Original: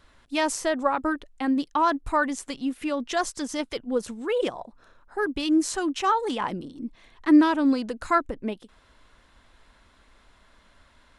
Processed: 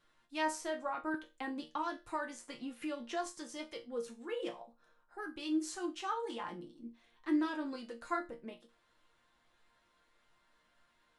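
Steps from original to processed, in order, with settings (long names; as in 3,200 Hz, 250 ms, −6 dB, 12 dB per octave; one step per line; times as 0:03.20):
low-shelf EQ 120 Hz −9.5 dB
resonators tuned to a chord A#2 sus4, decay 0.25 s
0:01.14–0:03.26: multiband upward and downward compressor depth 70%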